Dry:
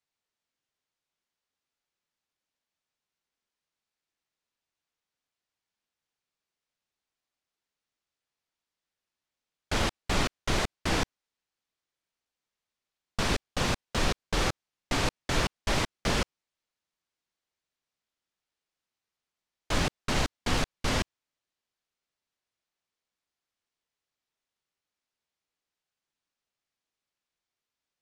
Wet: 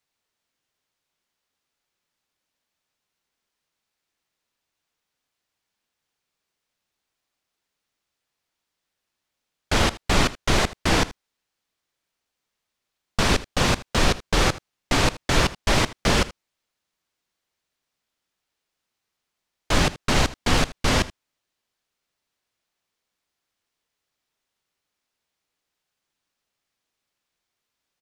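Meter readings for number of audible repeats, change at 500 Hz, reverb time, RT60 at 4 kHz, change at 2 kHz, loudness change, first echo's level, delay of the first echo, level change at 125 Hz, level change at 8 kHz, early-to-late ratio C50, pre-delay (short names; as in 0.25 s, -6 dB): 1, +7.5 dB, none, none, +7.5 dB, +7.5 dB, -18.0 dB, 79 ms, +7.5 dB, +7.5 dB, none, none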